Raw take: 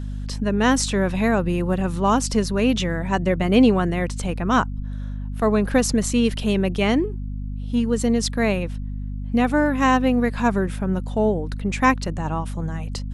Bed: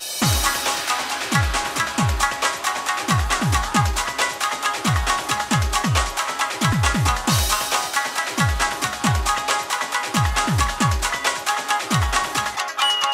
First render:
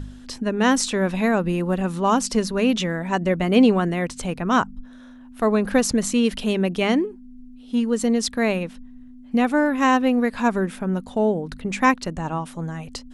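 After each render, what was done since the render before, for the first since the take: de-hum 50 Hz, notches 4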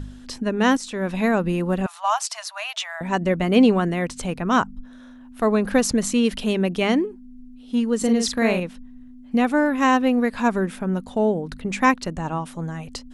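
0.77–1.24 fade in, from -13.5 dB; 1.86–3.01 Chebyshev high-pass 630 Hz, order 8; 7.97–8.6 doubler 44 ms -5 dB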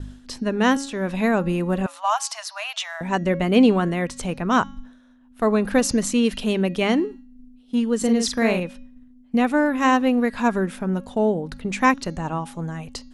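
de-hum 275.1 Hz, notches 25; expander -36 dBFS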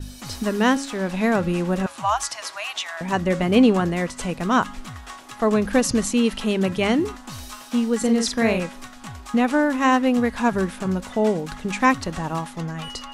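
add bed -18 dB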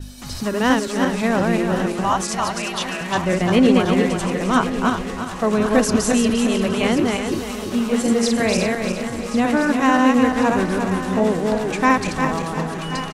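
regenerating reverse delay 0.175 s, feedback 59%, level -2 dB; on a send: feedback echo 1.082 s, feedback 56%, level -12.5 dB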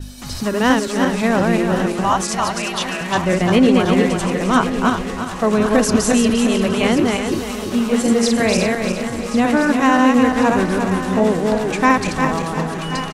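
gain +2.5 dB; limiter -3 dBFS, peak gain reduction 3 dB

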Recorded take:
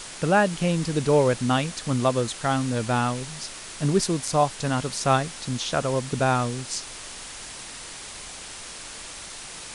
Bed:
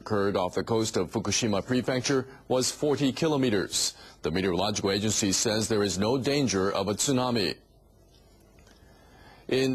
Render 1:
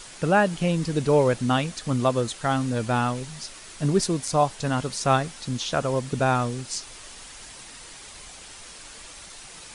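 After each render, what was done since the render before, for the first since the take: denoiser 6 dB, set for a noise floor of -39 dBFS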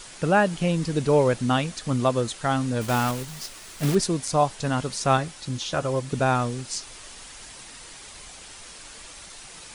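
2.81–3.97 block floating point 3-bit; 5.17–6.1 notch comb 230 Hz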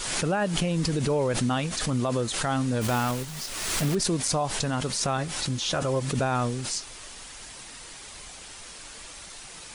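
limiter -17.5 dBFS, peak gain reduction 9.5 dB; backwards sustainer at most 36 dB/s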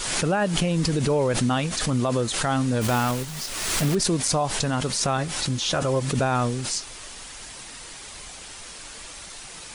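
gain +3 dB

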